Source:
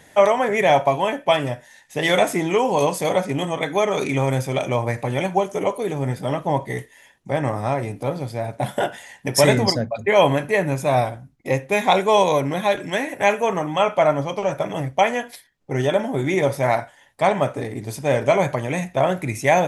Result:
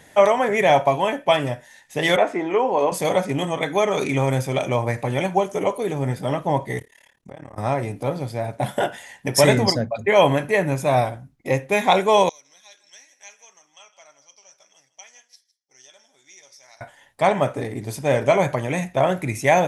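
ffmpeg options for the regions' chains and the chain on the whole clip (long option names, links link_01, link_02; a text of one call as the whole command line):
ffmpeg -i in.wav -filter_complex "[0:a]asettb=1/sr,asplit=3[link_01][link_02][link_03];[link_01]atrim=end=2.164[link_04];[link_02]atrim=start=2.16:end=2.92,asetpts=PTS-STARTPTS,afade=type=in:duration=0.004:curve=qsin,afade=type=out:start_time=0.756:duration=0.004:curve=qsin,lowpass=5600,acrossover=split=240 2200:gain=0.0794 1 0.251[link_05][link_06][link_07];[link_05][link_06][link_07]amix=inputs=3:normalize=0[link_08];[link_03]atrim=start=2.916[link_09];[link_04][link_08]acrossfade=duration=0.004:curve1=hsin:curve2=qsin[link_10];[link_10][link_09]acrossfade=duration=0.004:curve1=qsin:curve2=hsin,asettb=1/sr,asplit=3[link_11][link_12][link_13];[link_11]atrim=end=6.794[link_14];[link_12]atrim=start=6.79:end=7.58,asetpts=PTS-STARTPTS,afade=type=in:duration=0.004:curve=qsin,afade=type=out:start_time=0.786:duration=0.004:curve=qsin,acompressor=threshold=-31dB:ratio=16:attack=3.2:release=140:knee=1:detection=peak,tremolo=f=36:d=0.974[link_15];[link_13]atrim=start=7.576[link_16];[link_14][link_15]acrossfade=duration=0.004:curve1=hsin:curve2=qsin[link_17];[link_17][link_16]acrossfade=duration=0.004:curve1=qsin:curve2=hsin,asettb=1/sr,asplit=3[link_18][link_19][link_20];[link_18]atrim=end=12.294[link_21];[link_19]atrim=start=12.29:end=16.81,asetpts=PTS-STARTPTS,afade=type=in:duration=0.004:curve=qsin,afade=type=out:start_time=4.516:duration=0.004:curve=qsin,bandpass=frequency=5600:width_type=q:width=7.4,aecho=1:1:157:0.141,atrim=end_sample=199332[link_22];[link_20]atrim=start=16.806[link_23];[link_21][link_22]acrossfade=duration=0.004:curve1=hsin:curve2=qsin[link_24];[link_24][link_23]acrossfade=duration=0.004:curve1=qsin:curve2=hsin" out.wav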